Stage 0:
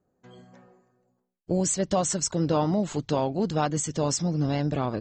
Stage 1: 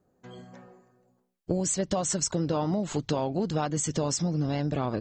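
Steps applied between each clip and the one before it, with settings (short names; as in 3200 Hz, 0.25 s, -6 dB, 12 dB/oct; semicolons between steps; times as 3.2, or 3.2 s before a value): compressor, threshold -28 dBFS, peak gain reduction 9 dB; gain +4 dB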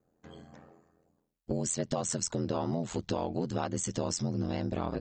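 ring modulator 42 Hz; gain -1.5 dB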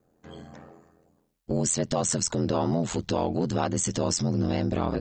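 transient shaper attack -4 dB, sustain +2 dB; gain +7 dB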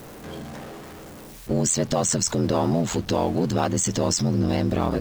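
zero-crossing step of -38.5 dBFS; gain +3 dB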